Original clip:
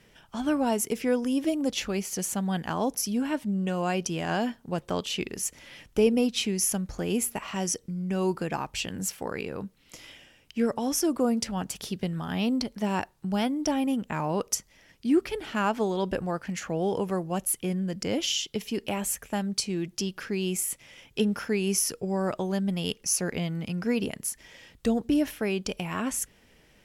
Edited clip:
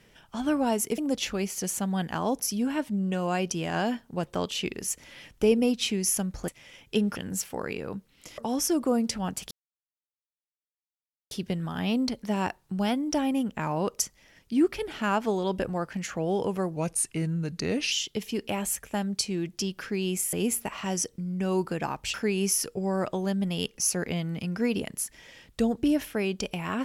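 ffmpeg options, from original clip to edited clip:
-filter_complex "[0:a]asplit=10[s0][s1][s2][s3][s4][s5][s6][s7][s8][s9];[s0]atrim=end=0.982[s10];[s1]atrim=start=1.528:end=7.032[s11];[s2]atrim=start=20.718:end=21.402[s12];[s3]atrim=start=8.838:end=10.062[s13];[s4]atrim=start=10.708:end=11.84,asetpts=PTS-STARTPTS,afade=t=out:st=1.128:d=0.004:c=hsin,apad=pad_dur=1.8[s14];[s5]atrim=start=11.84:end=17.294,asetpts=PTS-STARTPTS,afade=t=in:d=0.004:c=hsin[s15];[s6]atrim=start=17.29:end=18.31,asetpts=PTS-STARTPTS,asetrate=38808,aresample=44100[s16];[s7]atrim=start=18.306:end=20.722[s17];[s8]atrim=start=7.028:end=8.842[s18];[s9]atrim=start=21.398[s19];[s10][s11]acrossfade=d=0.004:c1=hsin:c2=hsin[s20];[s20][s12]acrossfade=d=0.004:c1=hsin:c2=hsin[s21];[s21][s13]acrossfade=d=0.004:c1=hsin:c2=hsin[s22];[s14][s15]concat=n=2:v=0:a=1[s23];[s22][s23]acrossfade=d=0.004:c1=hsin:c2=hsin[s24];[s24][s16]acrossfade=d=0.004:c1=hsin:c2=hsin[s25];[s25][s17]acrossfade=d=0.004:c1=hsin:c2=hsin[s26];[s26][s18]acrossfade=d=0.004:c1=hsin:c2=hsin[s27];[s27][s19]acrossfade=d=0.004:c1=hsin:c2=hsin"

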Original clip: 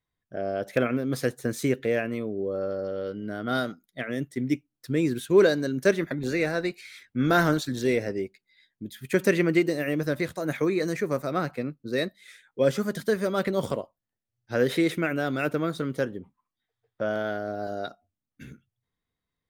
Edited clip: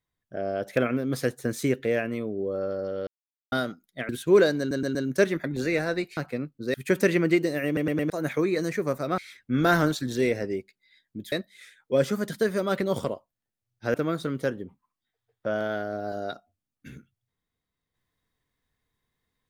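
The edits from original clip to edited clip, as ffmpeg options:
-filter_complex "[0:a]asplit=16[s0][s1][s2][s3][s4][s5][s6][s7][s8][s9][s10][s11][s12][s13][s14][s15];[s0]atrim=end=3.07,asetpts=PTS-STARTPTS,afade=t=out:st=3.066:d=0.004:c=hsin[s16];[s1]atrim=start=3.07:end=3.52,asetpts=PTS-STARTPTS,volume=0[s17];[s2]atrim=start=3.52:end=4.092,asetpts=PTS-STARTPTS,afade=t=in:d=0.004:c=hsin[s18];[s3]atrim=start=5.118:end=5.742[s19];[s4]atrim=start=5.618:end=5.742[s20];[s5]atrim=start=5.618:end=5.742[s21];[s6]atrim=start=5.618:end=6.842[s22];[s7]atrim=start=11.418:end=11.992[s23];[s8]atrim=start=8.978:end=10.012[s24];[s9]atrim=start=9.898:end=10.012[s25];[s10]atrim=start=9.898:end=10.012[s26];[s11]atrim=start=9.898:end=10.012[s27];[s12]atrim=start=10.338:end=11.422[s28];[s13]atrim=start=6.838:end=8.982[s29];[s14]atrim=start=11.988:end=14.612[s30];[s15]atrim=start=15.488[s31];[s16][s17][s18]concat=n=3:v=0:a=1[s32];[s32][s19]acrossfade=d=0.004:c1=hsin:c2=hsin[s33];[s33][s20]acrossfade=d=0.004:c1=hsin:c2=hsin[s34];[s34][s21]acrossfade=d=0.004:c1=hsin:c2=hsin[s35];[s35][s22]acrossfade=d=0.004:c1=hsin:c2=hsin[s36];[s36][s23]acrossfade=d=0.004:c1=hsin:c2=hsin[s37];[s37][s24]acrossfade=d=0.004:c1=hsin:c2=hsin[s38];[s38][s25]acrossfade=d=0.004:c1=hsin:c2=hsin[s39];[s39][s26]acrossfade=d=0.004:c1=hsin:c2=hsin[s40];[s40][s27]acrossfade=d=0.004:c1=hsin:c2=hsin[s41];[s41][s28]acrossfade=d=0.004:c1=hsin:c2=hsin[s42];[s42][s29]acrossfade=d=0.004:c1=hsin:c2=hsin[s43];[s43][s30]acrossfade=d=0.004:c1=hsin:c2=hsin[s44];[s44][s31]acrossfade=d=0.004:c1=hsin:c2=hsin"

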